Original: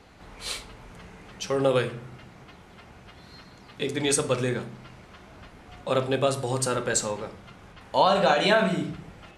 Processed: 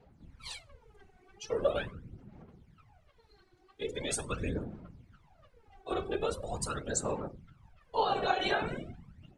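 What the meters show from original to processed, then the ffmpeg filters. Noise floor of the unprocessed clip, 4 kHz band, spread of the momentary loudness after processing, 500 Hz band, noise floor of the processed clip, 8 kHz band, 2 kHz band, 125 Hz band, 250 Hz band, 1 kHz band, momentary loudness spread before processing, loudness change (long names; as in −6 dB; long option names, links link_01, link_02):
−50 dBFS, −9.5 dB, 20 LU, −9.5 dB, −65 dBFS, −9.0 dB, −9.0 dB, −10.0 dB, −10.5 dB, −8.0 dB, 17 LU, −9.5 dB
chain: -af "afftfilt=real='hypot(re,im)*cos(2*PI*random(0))':imag='hypot(re,im)*sin(2*PI*random(1))':win_size=512:overlap=0.75,aphaser=in_gain=1:out_gain=1:delay=2.7:decay=0.64:speed=0.42:type=sinusoidal,afftdn=noise_reduction=12:noise_floor=-43,volume=-5dB"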